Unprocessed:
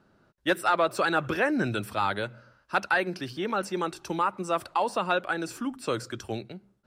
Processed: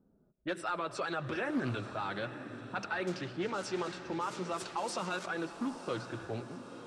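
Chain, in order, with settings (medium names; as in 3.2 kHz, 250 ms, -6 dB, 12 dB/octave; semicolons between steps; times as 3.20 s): 3.07–5.26 s: zero-crossing glitches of -25 dBFS; low-pass 8.4 kHz 24 dB/octave; level-controlled noise filter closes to 460 Hz, open at -22 dBFS; peak limiter -23 dBFS, peak gain reduction 9.5 dB; flange 0.37 Hz, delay 3.9 ms, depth 4.7 ms, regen -34%; echo that smears into a reverb 936 ms, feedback 50%, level -11.5 dB; reverberation RT60 2.2 s, pre-delay 55 ms, DRR 17 dB; loudspeaker Doppler distortion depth 0.18 ms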